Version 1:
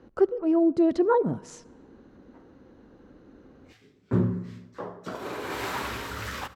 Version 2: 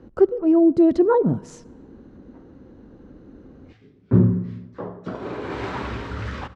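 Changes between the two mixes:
background: add air absorption 140 m; master: add low shelf 430 Hz +10 dB

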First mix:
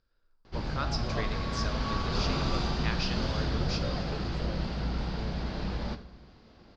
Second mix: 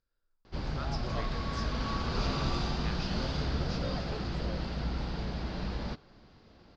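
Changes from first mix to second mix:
speech -9.0 dB; background: send off

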